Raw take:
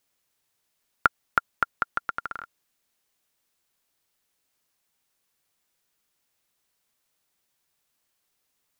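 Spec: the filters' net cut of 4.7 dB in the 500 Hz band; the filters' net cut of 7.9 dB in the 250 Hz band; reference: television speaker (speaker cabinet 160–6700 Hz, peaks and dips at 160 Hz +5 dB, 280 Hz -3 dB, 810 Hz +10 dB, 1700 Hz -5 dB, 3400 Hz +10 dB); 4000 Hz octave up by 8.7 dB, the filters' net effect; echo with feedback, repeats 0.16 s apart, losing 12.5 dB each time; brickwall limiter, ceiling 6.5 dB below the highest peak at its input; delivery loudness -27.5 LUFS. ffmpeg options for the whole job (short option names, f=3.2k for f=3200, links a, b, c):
-af "equalizer=f=250:t=o:g=-8,equalizer=f=500:t=o:g=-7,equalizer=f=4k:t=o:g=3.5,alimiter=limit=-10dB:level=0:latency=1,highpass=f=160:w=0.5412,highpass=f=160:w=1.3066,equalizer=f=160:t=q:w=4:g=5,equalizer=f=280:t=q:w=4:g=-3,equalizer=f=810:t=q:w=4:g=10,equalizer=f=1.7k:t=q:w=4:g=-5,equalizer=f=3.4k:t=q:w=4:g=10,lowpass=f=6.7k:w=0.5412,lowpass=f=6.7k:w=1.3066,aecho=1:1:160|320|480:0.237|0.0569|0.0137,volume=6dB"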